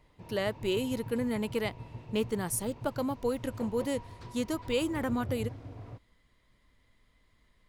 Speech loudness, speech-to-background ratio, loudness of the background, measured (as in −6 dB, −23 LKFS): −33.0 LKFS, 11.5 dB, −44.5 LKFS